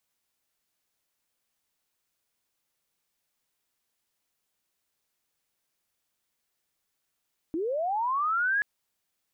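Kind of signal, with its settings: sweep linear 300 Hz -> 1.7 kHz -27 dBFS -> -22.5 dBFS 1.08 s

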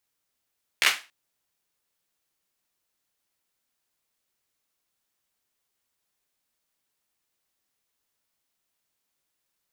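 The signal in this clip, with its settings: hand clap length 0.28 s, apart 14 ms, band 2.1 kHz, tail 0.29 s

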